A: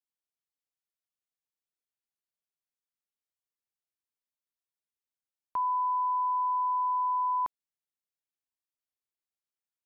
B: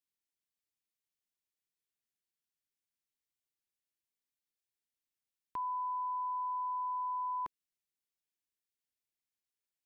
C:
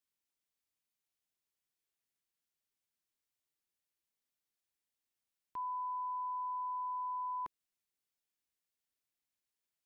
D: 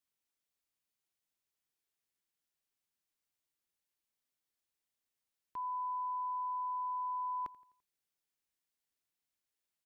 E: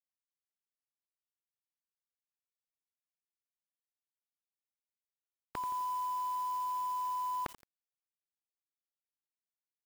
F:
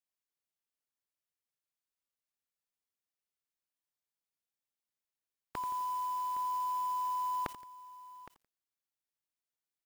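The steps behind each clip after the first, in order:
high-order bell 860 Hz -8 dB
peak limiter -36.5 dBFS, peak gain reduction 7 dB; trim +1 dB
feedback delay 85 ms, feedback 50%, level -21.5 dB
spectral peaks clipped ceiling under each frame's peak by 27 dB; bit crusher 9-bit; trim +4 dB
delay 814 ms -16 dB

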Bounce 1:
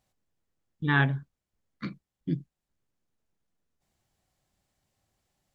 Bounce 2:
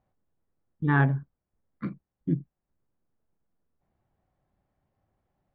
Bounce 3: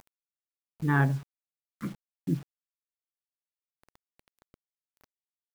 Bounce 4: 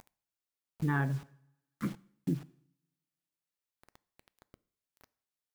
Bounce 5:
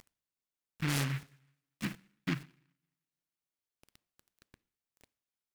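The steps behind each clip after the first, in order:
low-pass 1.3 kHz 12 dB/octave; trim +3 dB
upward compressor, threshold -41 dBFS; bit crusher 8-bit; trim -2 dB
two-slope reverb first 0.61 s, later 1.6 s, from -28 dB, DRR 19 dB; compression 5:1, threshold -29 dBFS, peak gain reduction 9 dB; trim +1.5 dB
delay time shaken by noise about 1.8 kHz, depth 0.33 ms; trim -2 dB

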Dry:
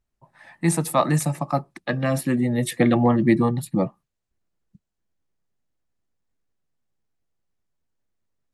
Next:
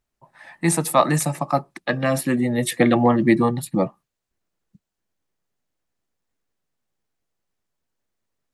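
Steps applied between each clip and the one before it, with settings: bass shelf 200 Hz -8 dB; trim +4 dB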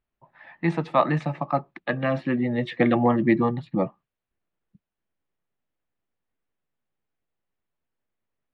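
low-pass 3.3 kHz 24 dB/octave; trim -3.5 dB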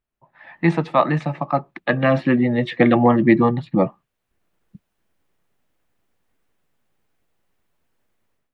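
level rider gain up to 14.5 dB; trim -1 dB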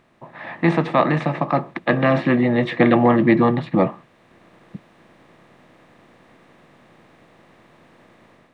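spectral levelling over time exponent 0.6; trim -2.5 dB

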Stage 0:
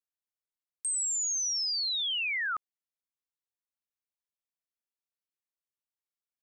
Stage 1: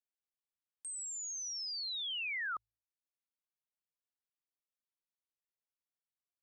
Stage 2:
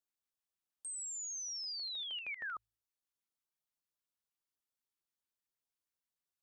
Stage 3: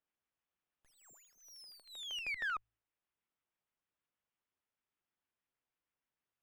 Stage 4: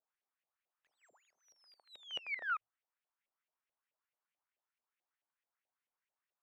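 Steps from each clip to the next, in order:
reverb removal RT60 0.55 s; treble shelf 5.4 kHz -9 dB; de-hum 54.88 Hz, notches 2; trim -5.5 dB
in parallel at +2 dB: peak limiter -42 dBFS, peak gain reduction 8 dB; on the sum: LFO notch square 6.4 Hz 600–2200 Hz; trim -6 dB
self-modulated delay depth 0.062 ms; Savitzky-Golay filter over 25 samples; sliding maximum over 3 samples; trim +5 dB
LFO band-pass saw up 4.6 Hz 540–2700 Hz; trim +5.5 dB

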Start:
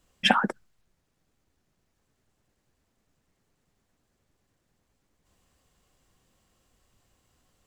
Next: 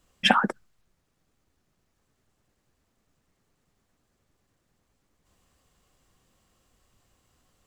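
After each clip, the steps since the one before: peaking EQ 1.2 kHz +3 dB 0.21 oct; trim +1 dB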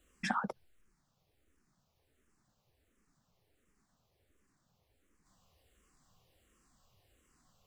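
compression 16:1, threshold -26 dBFS, peak gain reduction 14 dB; barber-pole phaser -1.4 Hz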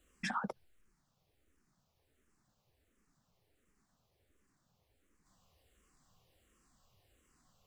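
peak limiter -25.5 dBFS, peak gain reduction 7.5 dB; trim -1 dB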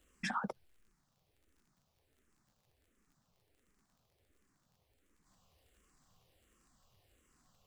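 crackle 51 per s -61 dBFS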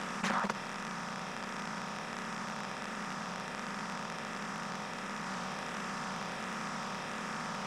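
spectral levelling over time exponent 0.2; loudspeaker Doppler distortion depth 0.42 ms

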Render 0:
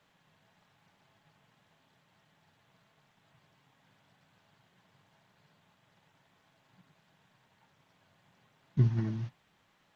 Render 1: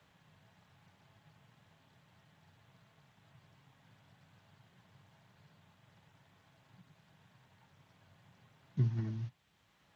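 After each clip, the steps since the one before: high-pass 53 Hz; three bands compressed up and down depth 40%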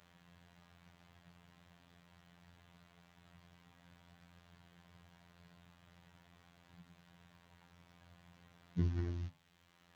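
robot voice 86.6 Hz; de-hum 51.02 Hz, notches 27; trim +4 dB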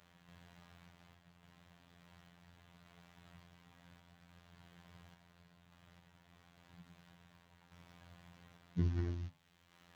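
random-step tremolo 3.5 Hz; trim +3.5 dB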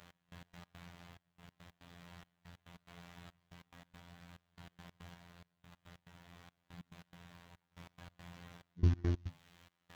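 trance gate "x..x.x.xxx" 141 bpm -24 dB; trim +7 dB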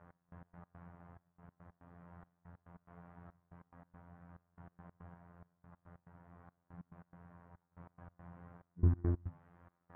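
low-pass 1.4 kHz 24 dB/octave; reverse; upward compressor, threshold -54 dBFS; reverse

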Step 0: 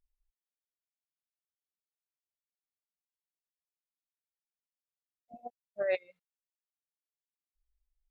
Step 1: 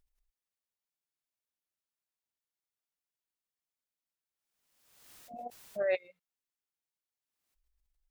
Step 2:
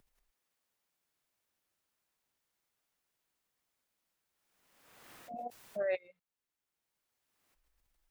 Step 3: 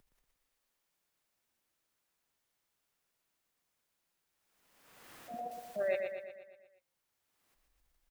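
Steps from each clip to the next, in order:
swell ahead of each attack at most 49 dB/s
three bands compressed up and down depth 40%
feedback delay 119 ms, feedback 55%, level -5.5 dB

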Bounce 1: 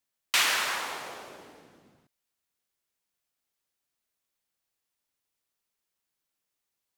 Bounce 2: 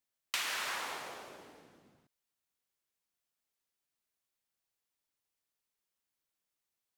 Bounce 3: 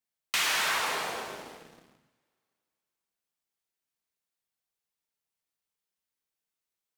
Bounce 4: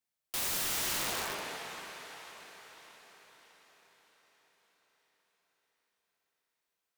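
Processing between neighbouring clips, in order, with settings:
compression 6:1, threshold -28 dBFS, peak gain reduction 8 dB; trim -4.5 dB
two-slope reverb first 0.72 s, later 2.7 s, from -18 dB, DRR 1 dB; waveshaping leveller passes 2
echo that smears into a reverb 544 ms, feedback 52%, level -12.5 dB; integer overflow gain 28.5 dB

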